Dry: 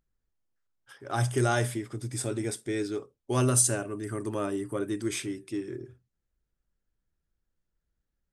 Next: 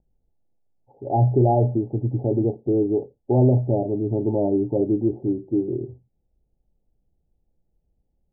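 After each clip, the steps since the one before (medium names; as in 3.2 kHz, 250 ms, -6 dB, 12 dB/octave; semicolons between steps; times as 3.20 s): Chebyshev low-pass 870 Hz, order 8; in parallel at +1 dB: peak limiter -25.5 dBFS, peak gain reduction 9.5 dB; on the sum: trim +5.5 dB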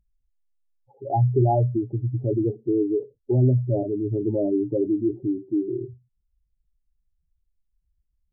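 spectral contrast enhancement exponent 2.1; trim -1.5 dB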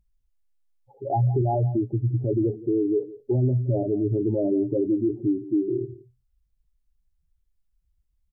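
peak limiter -18 dBFS, peak gain reduction 8 dB; delay 171 ms -18 dB; trim +2 dB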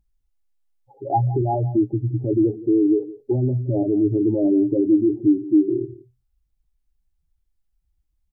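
small resonant body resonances 310/800 Hz, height 8 dB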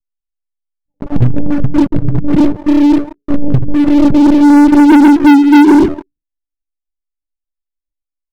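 monotone LPC vocoder at 8 kHz 290 Hz; low-pass sweep 190 Hz -> 550 Hz, 3.71–7.67 s; waveshaping leveller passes 5; trim -2 dB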